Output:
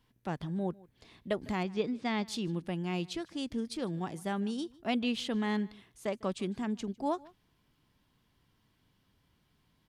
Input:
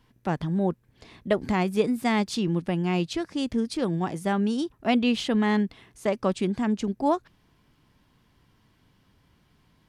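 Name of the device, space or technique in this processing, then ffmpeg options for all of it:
presence and air boost: -filter_complex "[0:a]asettb=1/sr,asplit=3[link_01][link_02][link_03];[link_01]atrim=end=1.634[link_04];[link_02]atrim=start=1.63:end=2.26,asetpts=PTS-STARTPTS,afade=type=in:duration=0.004:curve=qsin,afade=type=out:start_time=0.626:duration=0.004:curve=qsin,lowpass=frequency=5500:width=0.5412,lowpass=frequency=5500:width=1.3066[link_05];[link_03]atrim=start=2.256[link_06];[link_04][link_05]acrossfade=duration=0.004:curve1=hsin:curve2=qsin[link_07];[link_07][link_06]acrossfade=duration=0.004:curve1=qsin:curve2=hsin,equalizer=frequency=3500:width_type=o:width=0.77:gain=3,highshelf=frequency=9100:gain=6.5,asplit=2[link_08][link_09];[link_09]adelay=151.6,volume=-23dB,highshelf=frequency=4000:gain=-3.41[link_10];[link_08][link_10]amix=inputs=2:normalize=0,volume=-9dB"

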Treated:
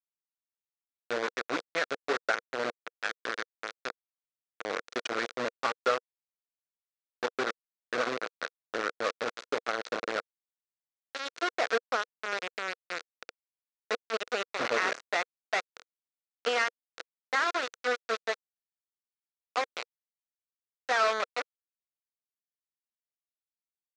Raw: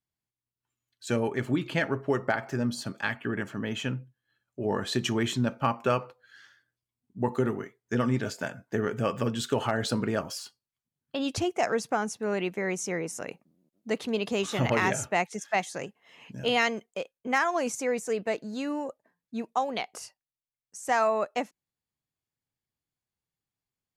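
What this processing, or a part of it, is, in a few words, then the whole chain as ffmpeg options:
hand-held game console: -af "highpass=61,acrusher=bits=3:mix=0:aa=0.000001,highpass=450,equalizer=frequency=480:width_type=q:width=4:gain=6,equalizer=frequency=890:width_type=q:width=4:gain=-6,equalizer=frequency=1400:width_type=q:width=4:gain=6,equalizer=frequency=3000:width_type=q:width=4:gain=-5,equalizer=frequency=5000:width_type=q:width=4:gain=-3,lowpass=frequency=5500:width=0.5412,lowpass=frequency=5500:width=1.3066,volume=-3dB"

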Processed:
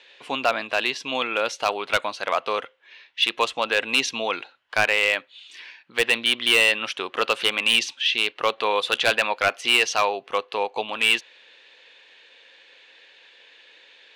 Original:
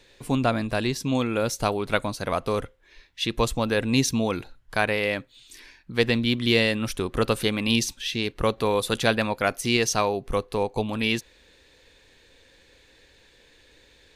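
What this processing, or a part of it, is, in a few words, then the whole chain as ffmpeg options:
megaphone: -af "highpass=670,lowpass=3800,equalizer=frequency=2900:width_type=o:width=0.51:gain=7.5,asoftclip=type=hard:threshold=-16dB,volume=5.5dB"

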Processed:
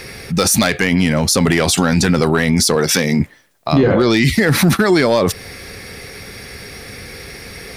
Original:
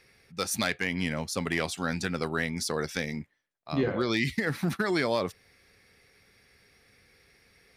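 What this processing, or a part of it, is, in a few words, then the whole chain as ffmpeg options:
mastering chain: -filter_complex "[0:a]equalizer=frequency=2100:width_type=o:width=2.4:gain=-4,acompressor=threshold=-32dB:ratio=2,asoftclip=type=tanh:threshold=-21dB,asoftclip=type=hard:threshold=-25dB,alimiter=level_in=35dB:limit=-1dB:release=50:level=0:latency=1,asettb=1/sr,asplit=3[link_01][link_02][link_03];[link_01]atrim=end=2.754[link_04];[link_02]atrim=start=2.75:end=3.2,asetpts=PTS-STARTPTS,afade=type=in:duration=0.004:curve=qsin,afade=type=out:start_time=0.446:duration=0.004:curve=qsin,highpass=130[link_05];[link_03]atrim=start=3.196[link_06];[link_04][link_05]acrossfade=duration=0.004:curve1=hsin:curve2=qsin[link_07];[link_07][link_06]acrossfade=duration=0.004:curve1=qsin:curve2=hsin,volume=-4.5dB"

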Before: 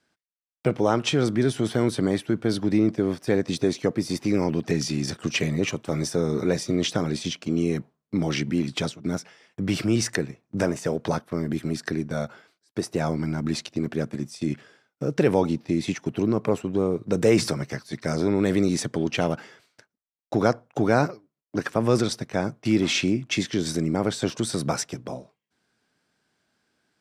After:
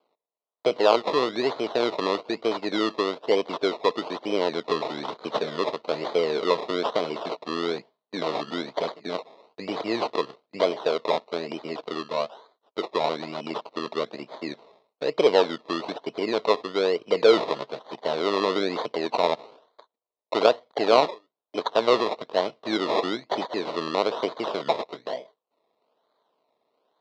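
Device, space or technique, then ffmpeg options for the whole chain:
circuit-bent sampling toy: -af "acrusher=samples=23:mix=1:aa=0.000001:lfo=1:lforange=13.8:lforate=1.1,highpass=440,equalizer=frequency=450:width_type=q:width=4:gain=7,equalizer=frequency=640:width_type=q:width=4:gain=7,equalizer=frequency=1000:width_type=q:width=4:gain=6,equalizer=frequency=1600:width_type=q:width=4:gain=-7,equalizer=frequency=2400:width_type=q:width=4:gain=-3,equalizer=frequency=4000:width_type=q:width=4:gain=7,lowpass=frequency=4600:width=0.5412,lowpass=frequency=4600:width=1.3066"

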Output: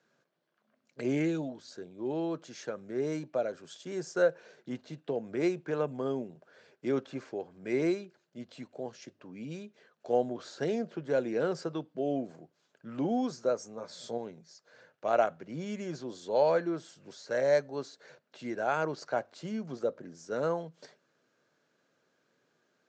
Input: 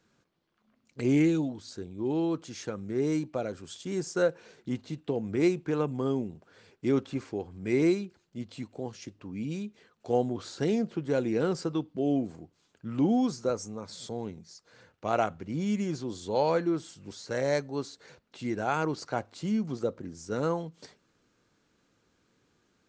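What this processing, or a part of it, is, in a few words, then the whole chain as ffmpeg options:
television speaker: -filter_complex "[0:a]asettb=1/sr,asplit=3[link_01][link_02][link_03];[link_01]atrim=end=13.764[link_04];[link_02]atrim=start=13.76:end=14.18,asetpts=PTS-STARTPTS,afade=type=in:duration=0.004:curve=qsin,afade=type=out:start_time=0.416:duration=0.004:curve=qsin,asplit=2[link_05][link_06];[link_06]adelay=17,volume=-4dB[link_07];[link_05][link_07]amix=inputs=2:normalize=0,atrim=end_sample=18522[link_08];[link_03]atrim=start=14.176[link_09];[link_04][link_08]acrossfade=duration=0.004:curve1=hsin:curve2=qsin[link_10];[link_10][link_09]acrossfade=duration=0.004:curve1=qsin:curve2=hsin,highpass=frequency=160:width=0.5412,highpass=frequency=160:width=1.3066,equalizer=frequency=200:width_type=q:width=4:gain=-9,equalizer=frequency=300:width_type=q:width=4:gain=-6,equalizer=frequency=610:width_type=q:width=4:gain=8,equalizer=frequency=1600:width_type=q:width=4:gain=6,lowpass=frequency=7700:width=0.5412,lowpass=frequency=7700:width=1.3066,lowshelf=frequency=440:gain=4.5,volume=-4.5dB"

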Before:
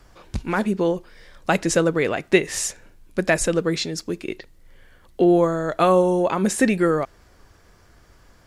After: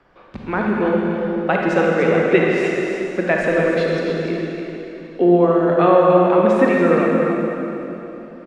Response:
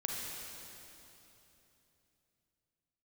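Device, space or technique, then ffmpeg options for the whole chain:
swimming-pool hall: -filter_complex "[1:a]atrim=start_sample=2205[link_01];[0:a][link_01]afir=irnorm=-1:irlink=0,acrossover=split=160 3500:gain=0.158 1 0.0708[link_02][link_03][link_04];[link_02][link_03][link_04]amix=inputs=3:normalize=0,highshelf=frequency=4300:gain=-6,aecho=1:1:290:0.422,volume=2dB"

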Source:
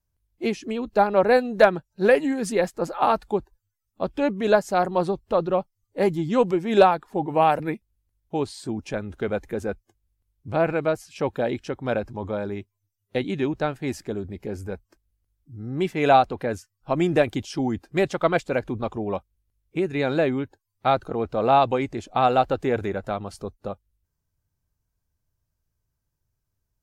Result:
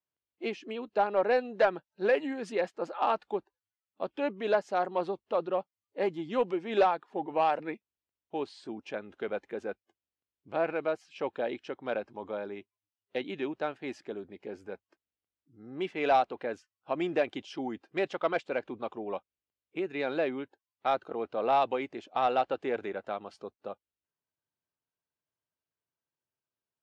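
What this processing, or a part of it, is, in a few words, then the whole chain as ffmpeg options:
intercom: -af "highpass=310,lowpass=3900,equalizer=frequency=2900:width_type=o:width=0.47:gain=4,asoftclip=type=tanh:threshold=-8.5dB,volume=-6.5dB"

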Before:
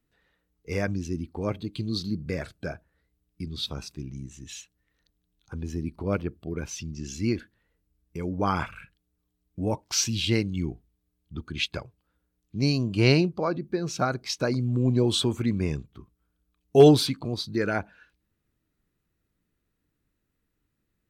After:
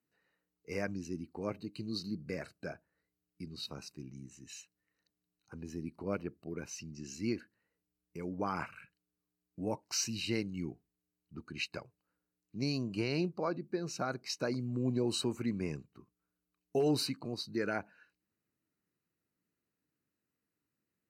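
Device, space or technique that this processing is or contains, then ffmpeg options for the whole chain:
PA system with an anti-feedback notch: -af "highpass=150,asuperstop=centerf=3400:order=12:qfactor=4.9,alimiter=limit=-14.5dB:level=0:latency=1:release=80,volume=-7.5dB"

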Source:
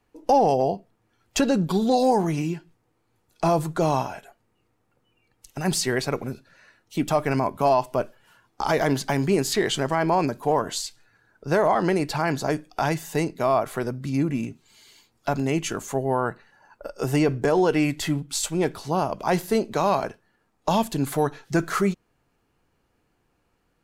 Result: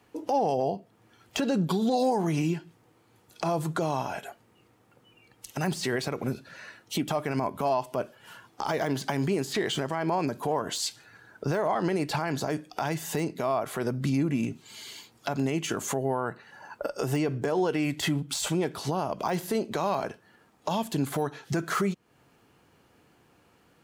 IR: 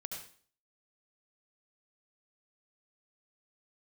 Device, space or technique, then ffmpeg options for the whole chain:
broadcast voice chain: -af "highpass=92,deesser=0.65,acompressor=threshold=-35dB:ratio=3,equalizer=frequency=3200:width_type=o:width=0.25:gain=3,alimiter=level_in=2.5dB:limit=-24dB:level=0:latency=1:release=71,volume=-2.5dB,volume=9dB"

